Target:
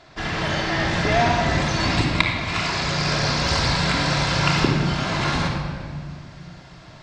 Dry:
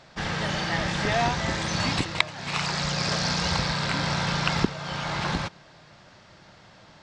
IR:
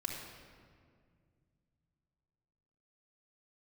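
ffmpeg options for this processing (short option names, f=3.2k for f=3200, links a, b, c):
-filter_complex "[0:a]asetnsamples=n=441:p=0,asendcmd='3.48 highshelf g 5',highshelf=f=8.1k:g=-8[a];[1:a]atrim=start_sample=2205[b];[a][b]afir=irnorm=-1:irlink=0,volume=4dB"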